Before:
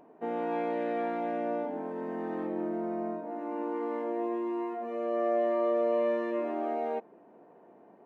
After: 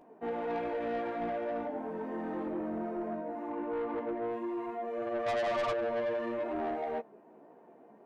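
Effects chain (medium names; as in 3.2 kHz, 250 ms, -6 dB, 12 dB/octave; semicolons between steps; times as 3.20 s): 3.50–4.31 s: low-pass 3.2 kHz; 5.26–5.72 s: peaking EQ 970 Hz +10 dB 2 oct; chorus voices 4, 0.96 Hz, delay 16 ms, depth 3.2 ms; saturation -31.5 dBFS, distortion -7 dB; trim +2.5 dB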